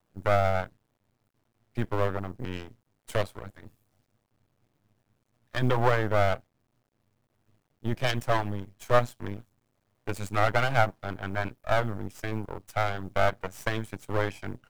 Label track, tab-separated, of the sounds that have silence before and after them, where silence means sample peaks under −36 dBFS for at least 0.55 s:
1.770000	3.670000	sound
5.540000	6.370000	sound
7.850000	9.400000	sound